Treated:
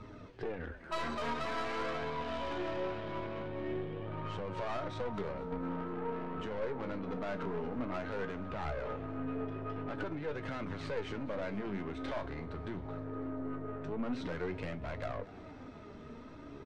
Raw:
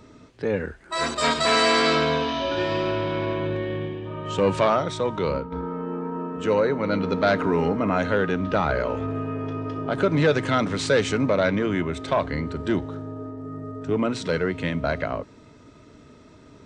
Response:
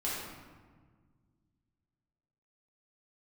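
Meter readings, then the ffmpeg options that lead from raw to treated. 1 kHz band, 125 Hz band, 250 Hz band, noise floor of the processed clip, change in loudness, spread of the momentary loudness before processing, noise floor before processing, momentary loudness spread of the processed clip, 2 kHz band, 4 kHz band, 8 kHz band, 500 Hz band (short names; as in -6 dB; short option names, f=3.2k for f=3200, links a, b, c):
-14.0 dB, -14.0 dB, -13.5 dB, -50 dBFS, -15.0 dB, 11 LU, -50 dBFS, 6 LU, -16.0 dB, -20.5 dB, under -20 dB, -15.5 dB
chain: -filter_complex "[0:a]acrossover=split=2700[a][b];[b]acompressor=threshold=-37dB:ratio=4:attack=1:release=60[c];[a][c]amix=inputs=2:normalize=0,aemphasis=mode=reproduction:type=riaa,bandreject=f=7.2k:w=12,alimiter=limit=-16dB:level=0:latency=1:release=309,acompressor=threshold=-26dB:ratio=6,asplit=2[d][e];[e]highpass=f=720:p=1,volume=18dB,asoftclip=type=tanh:threshold=-18.5dB[f];[d][f]amix=inputs=2:normalize=0,lowpass=f=7.1k:p=1,volume=-6dB,flanger=delay=0.8:depth=4.4:regen=55:speed=0.47:shape=triangular,aeval=exprs='(tanh(17.8*val(0)+0.55)-tanh(0.55))/17.8':c=same,flanger=delay=9.4:depth=7.9:regen=61:speed=0.2:shape=triangular,asplit=2[g][h];[h]asplit=6[i][j][k][l][m][n];[i]adelay=235,afreqshift=69,volume=-19dB[o];[j]adelay=470,afreqshift=138,volume=-23dB[p];[k]adelay=705,afreqshift=207,volume=-27dB[q];[l]adelay=940,afreqshift=276,volume=-31dB[r];[m]adelay=1175,afreqshift=345,volume=-35.1dB[s];[n]adelay=1410,afreqshift=414,volume=-39.1dB[t];[o][p][q][r][s][t]amix=inputs=6:normalize=0[u];[g][u]amix=inputs=2:normalize=0"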